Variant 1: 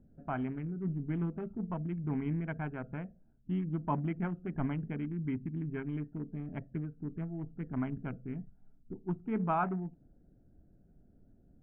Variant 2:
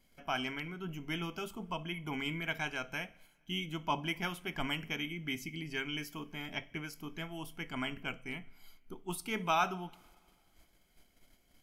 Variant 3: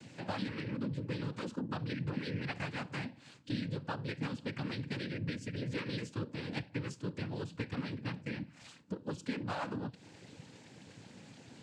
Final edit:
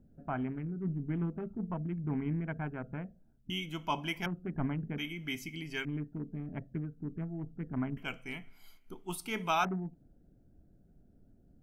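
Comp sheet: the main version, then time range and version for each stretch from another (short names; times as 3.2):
1
3.5–4.26 from 2
4.98–5.85 from 2
7.97–9.65 from 2
not used: 3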